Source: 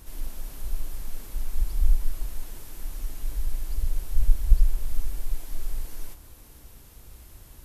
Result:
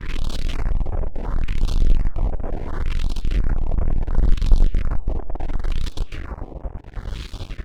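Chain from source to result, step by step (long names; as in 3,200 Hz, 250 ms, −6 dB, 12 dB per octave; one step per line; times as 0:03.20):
partials spread apart or drawn together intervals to 109%
single-tap delay 451 ms −21.5 dB
auto-filter low-pass sine 0.72 Hz 630–4,000 Hz
in parallel at −9 dB: fuzz pedal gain 43 dB, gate −52 dBFS
on the sum: notch on a step sequencer 5.6 Hz 710–4,200 Hz
level +4 dB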